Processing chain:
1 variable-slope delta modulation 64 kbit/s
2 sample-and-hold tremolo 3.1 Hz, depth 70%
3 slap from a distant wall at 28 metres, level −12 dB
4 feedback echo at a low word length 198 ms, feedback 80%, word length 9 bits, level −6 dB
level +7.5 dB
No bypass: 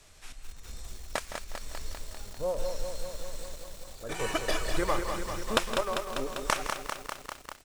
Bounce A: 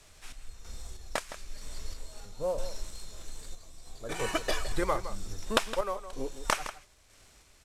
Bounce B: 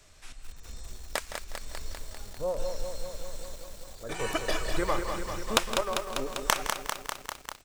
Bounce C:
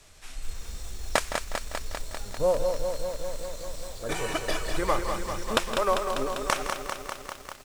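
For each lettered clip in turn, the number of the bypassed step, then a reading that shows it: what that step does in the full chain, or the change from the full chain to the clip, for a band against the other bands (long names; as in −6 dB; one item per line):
4, change in momentary loudness spread +3 LU
1, 8 kHz band +2.5 dB
2, change in momentary loudness spread −1 LU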